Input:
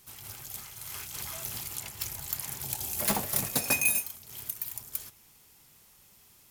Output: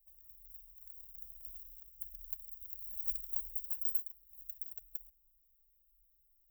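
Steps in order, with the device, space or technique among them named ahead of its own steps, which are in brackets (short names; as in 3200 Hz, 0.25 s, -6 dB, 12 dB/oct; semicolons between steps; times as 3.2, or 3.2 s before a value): parallel distortion (in parallel at -6 dB: hard clip -26 dBFS, distortion -9 dB); on the sum: inverse Chebyshev band-stop 130–9700 Hz, stop band 60 dB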